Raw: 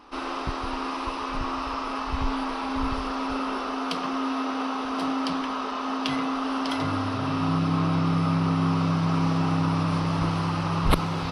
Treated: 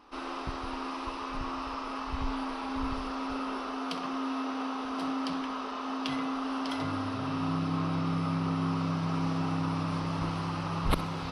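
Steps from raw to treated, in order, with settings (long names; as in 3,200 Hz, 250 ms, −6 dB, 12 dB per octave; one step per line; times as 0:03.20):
flutter between parallel walls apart 11 metres, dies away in 0.26 s
level −6.5 dB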